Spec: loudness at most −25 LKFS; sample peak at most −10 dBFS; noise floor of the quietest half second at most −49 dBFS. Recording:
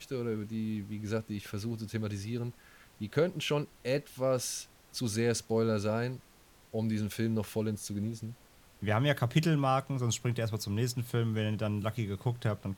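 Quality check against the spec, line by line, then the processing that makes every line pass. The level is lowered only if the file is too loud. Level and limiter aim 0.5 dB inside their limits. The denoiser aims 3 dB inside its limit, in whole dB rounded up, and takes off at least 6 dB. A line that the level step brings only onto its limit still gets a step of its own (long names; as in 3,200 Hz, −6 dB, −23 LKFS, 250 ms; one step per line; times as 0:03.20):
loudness −33.0 LKFS: in spec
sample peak −14.0 dBFS: in spec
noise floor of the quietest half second −60 dBFS: in spec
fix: no processing needed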